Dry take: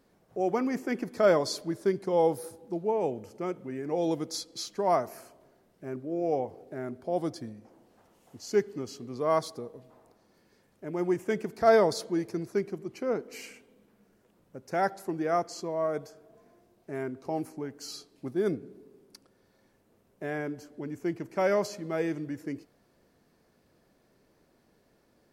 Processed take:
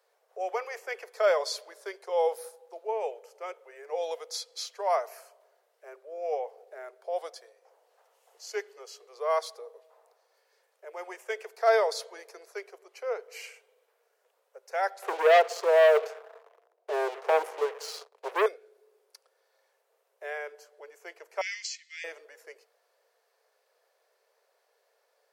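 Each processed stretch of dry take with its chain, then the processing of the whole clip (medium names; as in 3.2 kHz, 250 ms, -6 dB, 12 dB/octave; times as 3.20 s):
15.02–18.46 s: tilt shelf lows +9.5 dB, about 1.1 kHz + waveshaping leveller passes 3
21.41–22.04 s: Chebyshev band-pass 1.9–7.5 kHz, order 4 + treble shelf 2.7 kHz +8.5 dB
whole clip: steep high-pass 440 Hz 72 dB/octave; dynamic bell 2.6 kHz, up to +5 dB, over -48 dBFS, Q 1; trim -1.5 dB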